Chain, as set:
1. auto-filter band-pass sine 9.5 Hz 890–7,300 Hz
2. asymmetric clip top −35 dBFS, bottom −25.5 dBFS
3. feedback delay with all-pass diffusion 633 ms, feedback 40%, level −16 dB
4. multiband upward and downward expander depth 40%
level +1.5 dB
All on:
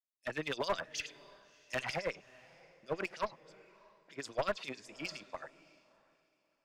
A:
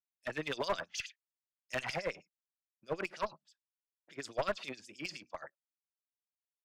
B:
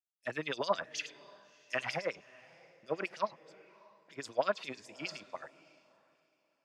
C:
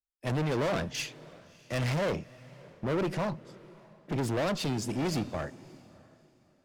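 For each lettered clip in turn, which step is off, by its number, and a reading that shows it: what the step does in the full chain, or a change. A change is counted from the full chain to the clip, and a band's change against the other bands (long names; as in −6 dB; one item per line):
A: 3, change in momentary loudness spread −9 LU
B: 2, distortion level −11 dB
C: 1, 125 Hz band +14.0 dB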